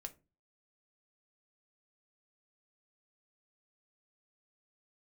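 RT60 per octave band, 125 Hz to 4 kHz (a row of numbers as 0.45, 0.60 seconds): 0.50, 0.40, 0.35, 0.25, 0.20, 0.15 seconds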